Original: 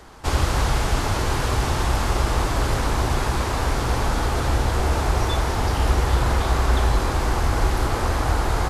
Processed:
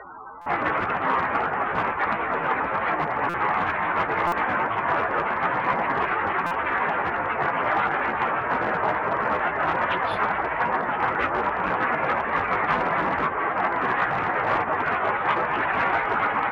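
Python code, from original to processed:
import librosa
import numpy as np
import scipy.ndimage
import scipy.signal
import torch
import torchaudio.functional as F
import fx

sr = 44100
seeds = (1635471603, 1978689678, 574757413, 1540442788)

p1 = fx.tracing_dist(x, sr, depth_ms=0.32)
p2 = fx.rider(p1, sr, range_db=10, speed_s=0.5)
p3 = p1 + F.gain(torch.from_numpy(p2), 0.0).numpy()
p4 = fx.spec_topn(p3, sr, count=32)
p5 = fx.cheby_harmonics(p4, sr, harmonics=(3, 7), levels_db=(-24, -7), full_scale_db=-2.0)
p6 = fx.stretch_vocoder_free(p5, sr, factor=1.9)
p7 = np.clip(10.0 ** (9.5 / 20.0) * p6, -1.0, 1.0) / 10.0 ** (9.5 / 20.0)
p8 = fx.bandpass_q(p7, sr, hz=1900.0, q=0.91)
p9 = p8 + 10.0 ** (-24.0 / 20.0) * np.pad(p8, (int(706 * sr / 1000.0), 0))[:len(p8)]
p10 = fx.buffer_glitch(p9, sr, at_s=(0.41, 3.29, 4.27, 6.46), block=256, repeats=8)
y = F.gain(torch.from_numpy(p10), 2.0).numpy()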